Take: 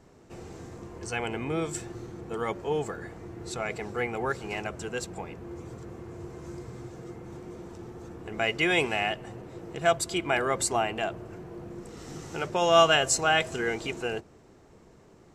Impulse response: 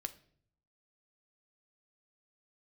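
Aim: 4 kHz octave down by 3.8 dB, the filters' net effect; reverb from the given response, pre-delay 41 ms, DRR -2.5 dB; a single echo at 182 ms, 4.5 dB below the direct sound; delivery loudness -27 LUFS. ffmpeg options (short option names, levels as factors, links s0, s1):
-filter_complex "[0:a]equalizer=f=4000:t=o:g=-6.5,aecho=1:1:182:0.596,asplit=2[s0][s1];[1:a]atrim=start_sample=2205,adelay=41[s2];[s1][s2]afir=irnorm=-1:irlink=0,volume=1.68[s3];[s0][s3]amix=inputs=2:normalize=0,volume=0.708"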